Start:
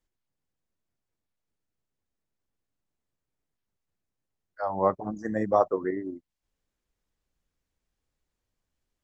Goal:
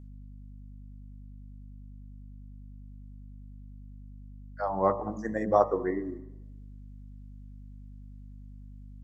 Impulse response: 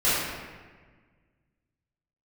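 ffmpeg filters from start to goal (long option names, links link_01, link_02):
-filter_complex "[0:a]bandreject=frequency=53.57:width_type=h:width=4,bandreject=frequency=107.14:width_type=h:width=4,bandreject=frequency=160.71:width_type=h:width=4,bandreject=frequency=214.28:width_type=h:width=4,bandreject=frequency=267.85:width_type=h:width=4,bandreject=frequency=321.42:width_type=h:width=4,bandreject=frequency=374.99:width_type=h:width=4,bandreject=frequency=428.56:width_type=h:width=4,bandreject=frequency=482.13:width_type=h:width=4,bandreject=frequency=535.7:width_type=h:width=4,bandreject=frequency=589.27:width_type=h:width=4,bandreject=frequency=642.84:width_type=h:width=4,bandreject=frequency=696.41:width_type=h:width=4,bandreject=frequency=749.98:width_type=h:width=4,bandreject=frequency=803.55:width_type=h:width=4,bandreject=frequency=857.12:width_type=h:width=4,bandreject=frequency=910.69:width_type=h:width=4,bandreject=frequency=964.26:width_type=h:width=4,bandreject=frequency=1017.83:width_type=h:width=4,bandreject=frequency=1071.4:width_type=h:width=4,bandreject=frequency=1124.97:width_type=h:width=4,bandreject=frequency=1178.54:width_type=h:width=4,bandreject=frequency=1232.11:width_type=h:width=4,bandreject=frequency=1285.68:width_type=h:width=4,aeval=exprs='val(0)+0.00562*(sin(2*PI*50*n/s)+sin(2*PI*2*50*n/s)/2+sin(2*PI*3*50*n/s)/3+sin(2*PI*4*50*n/s)/4+sin(2*PI*5*50*n/s)/5)':channel_layout=same,asplit=2[link_01][link_02];[1:a]atrim=start_sample=2205,asetrate=70560,aresample=44100,adelay=99[link_03];[link_02][link_03]afir=irnorm=-1:irlink=0,volume=-33dB[link_04];[link_01][link_04]amix=inputs=2:normalize=0"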